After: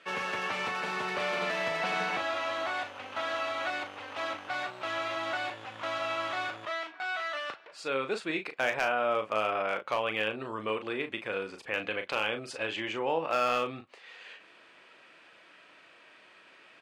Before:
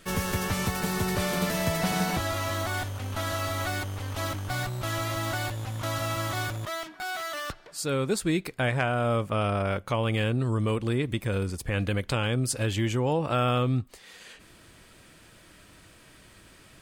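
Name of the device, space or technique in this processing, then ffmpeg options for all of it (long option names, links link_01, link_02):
megaphone: -filter_complex "[0:a]highpass=510,lowpass=3000,equalizer=frequency=2600:width_type=o:width=0.32:gain=5,asoftclip=type=hard:threshold=-19.5dB,asplit=2[link_01][link_02];[link_02]adelay=37,volume=-8dB[link_03];[link_01][link_03]amix=inputs=2:normalize=0"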